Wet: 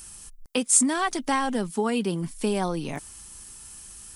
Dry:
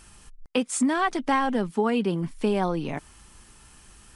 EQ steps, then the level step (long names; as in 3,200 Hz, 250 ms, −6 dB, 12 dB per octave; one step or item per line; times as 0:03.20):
bass and treble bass +1 dB, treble +8 dB
high-shelf EQ 7,700 Hz +11 dB
−2.0 dB